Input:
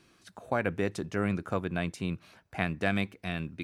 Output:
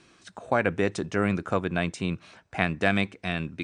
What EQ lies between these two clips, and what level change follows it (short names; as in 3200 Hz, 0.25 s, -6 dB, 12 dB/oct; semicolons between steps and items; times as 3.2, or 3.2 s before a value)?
steep low-pass 9300 Hz 72 dB/oct; low shelf 210 Hz -4 dB; notch 4600 Hz, Q 23; +6.0 dB